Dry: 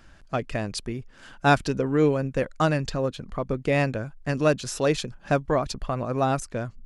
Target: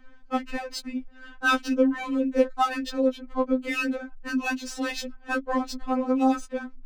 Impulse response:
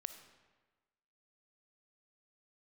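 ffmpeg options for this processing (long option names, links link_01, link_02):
-af "adynamicsmooth=sensitivity=7.5:basefreq=2700,afftfilt=real='re*3.46*eq(mod(b,12),0)':imag='im*3.46*eq(mod(b,12),0)':win_size=2048:overlap=0.75,volume=2.5dB"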